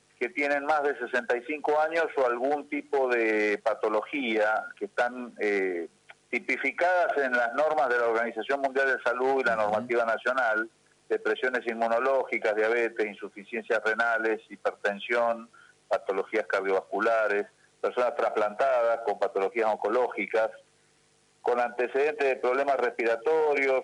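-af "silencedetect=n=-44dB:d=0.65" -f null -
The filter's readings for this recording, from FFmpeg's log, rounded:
silence_start: 20.57
silence_end: 21.44 | silence_duration: 0.87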